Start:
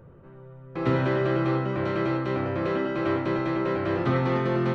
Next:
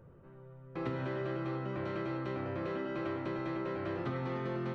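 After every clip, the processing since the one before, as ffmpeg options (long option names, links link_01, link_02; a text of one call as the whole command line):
ffmpeg -i in.wav -af "acompressor=threshold=-26dB:ratio=6,volume=-7dB" out.wav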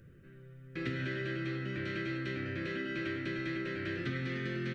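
ffmpeg -i in.wav -af "firequalizer=gain_entry='entry(310,0);entry(890,-23);entry(1600,7)':delay=0.05:min_phase=1,volume=1dB" out.wav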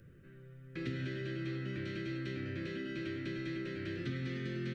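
ffmpeg -i in.wav -filter_complex "[0:a]acrossover=split=460|3000[link_01][link_02][link_03];[link_02]acompressor=threshold=-49dB:ratio=4[link_04];[link_01][link_04][link_03]amix=inputs=3:normalize=0,volume=-1dB" out.wav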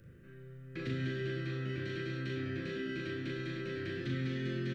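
ffmpeg -i in.wav -af "aecho=1:1:38|64:0.668|0.355" out.wav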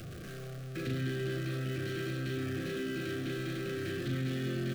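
ffmpeg -i in.wav -af "aeval=exprs='val(0)+0.5*0.01*sgn(val(0))':channel_layout=same,asuperstop=centerf=920:order=20:qfactor=3,equalizer=frequency=2000:width=4.5:gain=-4.5" out.wav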